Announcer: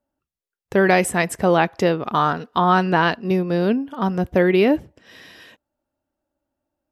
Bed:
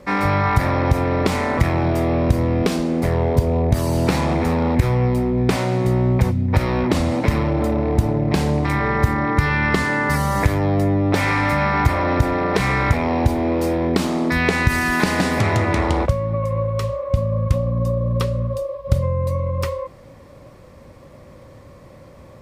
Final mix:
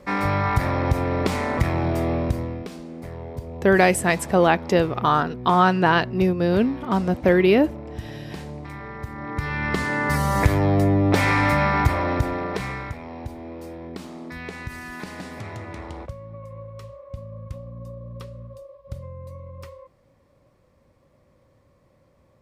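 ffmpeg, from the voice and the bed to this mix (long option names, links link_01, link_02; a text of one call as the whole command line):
ffmpeg -i stem1.wav -i stem2.wav -filter_complex "[0:a]adelay=2900,volume=-0.5dB[link_01];[1:a]volume=12dB,afade=type=out:start_time=2.1:duration=0.56:silence=0.237137,afade=type=in:start_time=9.1:duration=1.41:silence=0.158489,afade=type=out:start_time=11.49:duration=1.46:silence=0.149624[link_02];[link_01][link_02]amix=inputs=2:normalize=0" out.wav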